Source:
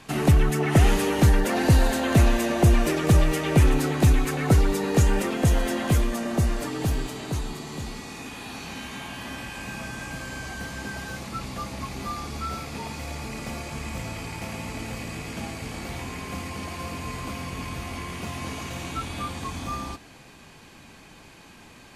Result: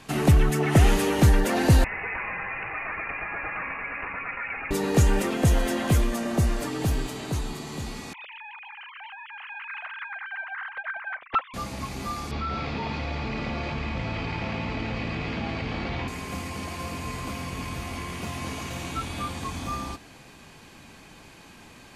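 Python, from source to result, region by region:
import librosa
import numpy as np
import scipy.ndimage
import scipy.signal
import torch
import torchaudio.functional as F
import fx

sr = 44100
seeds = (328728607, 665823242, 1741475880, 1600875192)

y = fx.chain(x, sr, fx.steep_highpass(hz=1100.0, slope=48),
    fx.freq_invert(carrier_hz=3600),
    fx.env_flatten(amount_pct=50), at=(1.84, 4.71))
y = fx.chain(y, sr, fx.sine_speech(),
    fx.doppler_dist(depth_ms=0.68), at=(8.13, 11.54))
y = fx.chain(y, sr, fx.lowpass(hz=4200.0, slope=24),
    fx.env_flatten(amount_pct=70), at=(12.31, 16.08))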